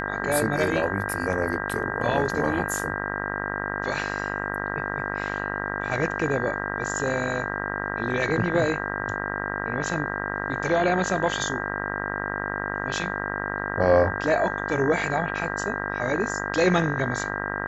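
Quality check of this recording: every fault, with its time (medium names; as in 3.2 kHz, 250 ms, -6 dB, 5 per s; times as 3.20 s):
buzz 50 Hz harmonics 39 -31 dBFS
whine 1.6 kHz -33 dBFS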